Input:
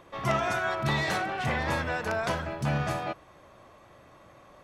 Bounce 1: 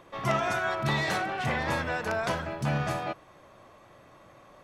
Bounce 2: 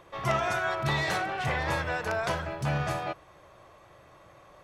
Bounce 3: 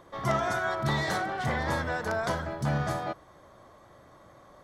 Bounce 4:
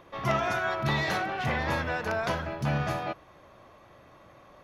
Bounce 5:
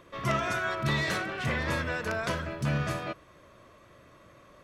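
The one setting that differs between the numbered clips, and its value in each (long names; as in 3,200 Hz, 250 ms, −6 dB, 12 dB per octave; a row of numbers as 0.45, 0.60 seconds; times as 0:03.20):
parametric band, centre frequency: 64, 240, 2,600, 8,300, 800 Hertz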